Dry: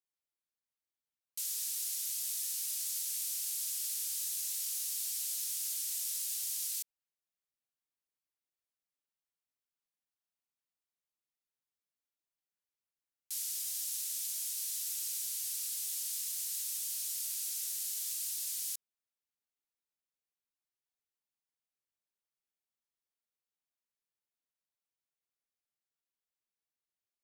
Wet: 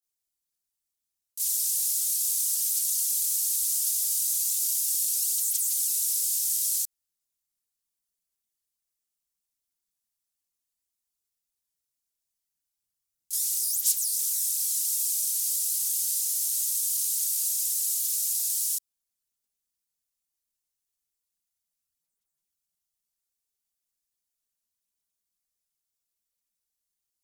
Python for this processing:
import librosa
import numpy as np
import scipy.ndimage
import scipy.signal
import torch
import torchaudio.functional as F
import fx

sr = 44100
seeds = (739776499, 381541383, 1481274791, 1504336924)

y = fx.chorus_voices(x, sr, voices=6, hz=1.5, base_ms=26, depth_ms=3.0, mix_pct=70)
y = fx.bass_treble(y, sr, bass_db=7, treble_db=14)